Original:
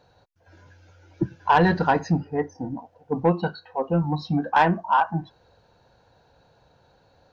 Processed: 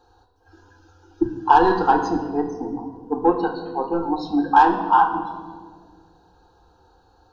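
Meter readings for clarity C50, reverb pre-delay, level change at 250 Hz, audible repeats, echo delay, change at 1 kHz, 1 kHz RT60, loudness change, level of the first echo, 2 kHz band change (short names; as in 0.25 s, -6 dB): 8.0 dB, 4 ms, +2.5 dB, none, none, +5.5 dB, 1.6 s, +3.5 dB, none, -0.5 dB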